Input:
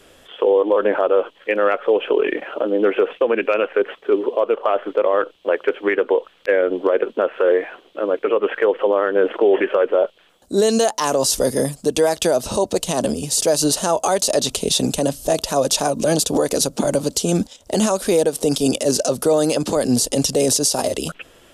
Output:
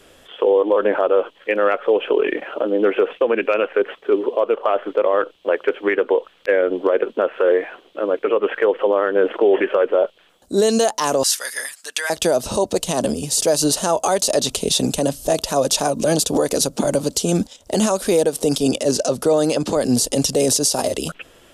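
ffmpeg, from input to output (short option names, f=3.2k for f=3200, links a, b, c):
-filter_complex "[0:a]asettb=1/sr,asplit=3[a][b][c];[a]atrim=end=11.234[d];[b]atrim=start=11.23:end=12.1,asetpts=PTS-STARTPTS,afade=t=in:d=0.004:c=qsin,afade=t=out:st=0.866:d=0.004:c=qsin,highpass=f=1.7k:t=q:w=3[e];[c]atrim=start=12.096[f];[d][e]acrossfade=d=0.004:c1=hsin:c2=qsin[g];[g][f]acrossfade=d=0.004:c1=qsin:c2=hsin,asettb=1/sr,asplit=3[h][i][j];[h]atrim=end=18.594[k];[i]atrim=start=18.59:end=19.84,asetpts=PTS-STARTPTS,afade=t=in:d=0.004:c=qsin,afade=t=out:st=1.246:d=0.004:c=qsin,highshelf=f=11k:g=-10.5[l];[j]atrim=start=19.836[m];[k][l]acrossfade=d=0.004:c1=hsin:c2=qsin[n];[n][m]acrossfade=d=0.004:c1=qsin:c2=hsin"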